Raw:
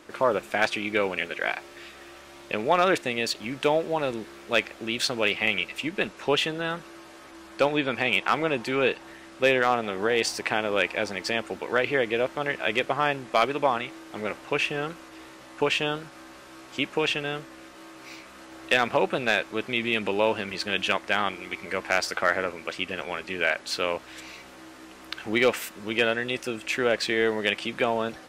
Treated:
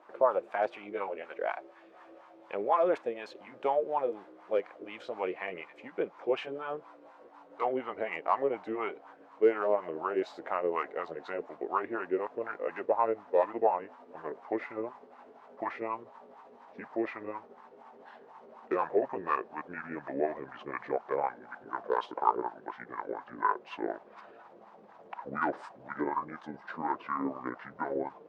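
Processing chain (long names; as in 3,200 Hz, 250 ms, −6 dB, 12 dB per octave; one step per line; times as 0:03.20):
pitch glide at a constant tempo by −9 semitones starting unshifted
LFO wah 4.1 Hz 440–1,000 Hz, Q 3.1
level +2.5 dB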